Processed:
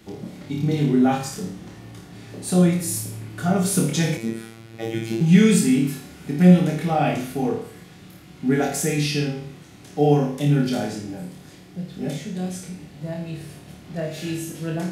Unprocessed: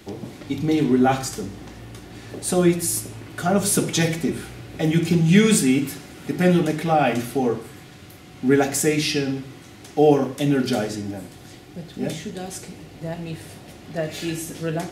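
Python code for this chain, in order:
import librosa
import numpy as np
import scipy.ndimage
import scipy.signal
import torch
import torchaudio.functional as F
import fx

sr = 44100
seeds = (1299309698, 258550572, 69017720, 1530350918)

y = fx.room_flutter(x, sr, wall_m=4.7, rt60_s=0.46)
y = fx.robotise(y, sr, hz=113.0, at=(4.17, 5.21))
y = fx.peak_eq(y, sr, hz=170.0, db=10.0, octaves=0.49)
y = F.gain(torch.from_numpy(y), -5.5).numpy()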